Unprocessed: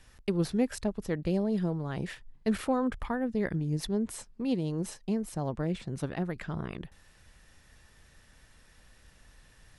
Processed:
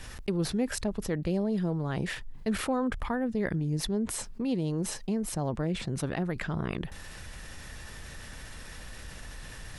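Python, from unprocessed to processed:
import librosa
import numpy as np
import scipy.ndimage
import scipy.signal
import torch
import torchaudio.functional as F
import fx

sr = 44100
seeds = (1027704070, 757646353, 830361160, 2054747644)

y = fx.env_flatten(x, sr, amount_pct=50)
y = y * 10.0 ** (-2.5 / 20.0)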